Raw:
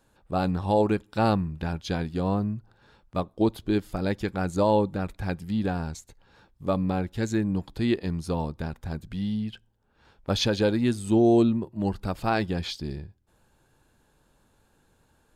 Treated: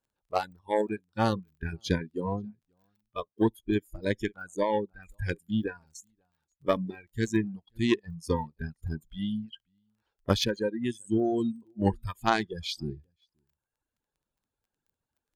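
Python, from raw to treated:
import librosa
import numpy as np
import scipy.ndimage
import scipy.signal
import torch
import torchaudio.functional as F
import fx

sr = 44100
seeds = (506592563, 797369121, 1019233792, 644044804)

p1 = fx.dereverb_blind(x, sr, rt60_s=1.4)
p2 = fx.rider(p1, sr, range_db=4, speed_s=0.5)
p3 = p2 + fx.echo_single(p2, sr, ms=533, db=-20.5, dry=0)
p4 = fx.dmg_crackle(p3, sr, seeds[0], per_s=18.0, level_db=-37.0)
p5 = fx.cheby_harmonics(p4, sr, harmonics=(3,), levels_db=(-14,), full_scale_db=-12.0)
p6 = fx.noise_reduce_blind(p5, sr, reduce_db=21)
y = p6 * librosa.db_to_amplitude(4.5)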